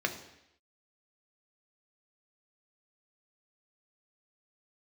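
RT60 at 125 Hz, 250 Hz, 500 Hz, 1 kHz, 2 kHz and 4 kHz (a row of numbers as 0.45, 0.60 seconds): 0.75, 0.80, 0.80, 0.80, 0.90, 0.85 seconds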